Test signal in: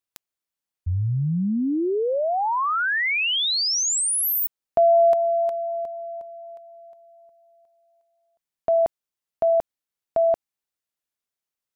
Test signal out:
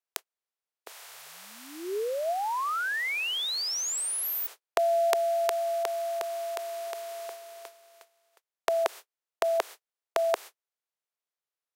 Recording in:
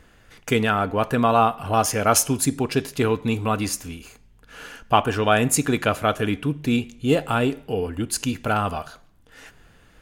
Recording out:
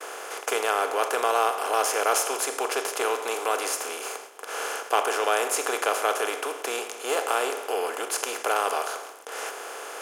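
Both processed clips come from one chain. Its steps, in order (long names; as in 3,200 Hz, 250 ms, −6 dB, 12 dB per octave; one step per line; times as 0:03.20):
compressor on every frequency bin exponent 0.4
noise gate −30 dBFS, range −49 dB
Chebyshev high-pass filter 400 Hz, order 4
level −8.5 dB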